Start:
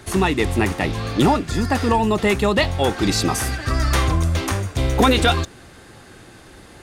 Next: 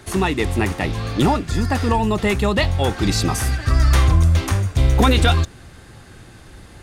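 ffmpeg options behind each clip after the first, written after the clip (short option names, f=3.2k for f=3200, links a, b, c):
-af "asubboost=boost=2:cutoff=200,volume=-1dB"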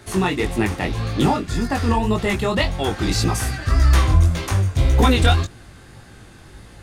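-af "flanger=delay=17:depth=5.6:speed=1.8,volume=2dB"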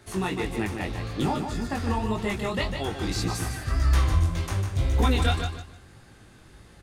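-af "aecho=1:1:151|302|453:0.447|0.116|0.0302,volume=-8.5dB"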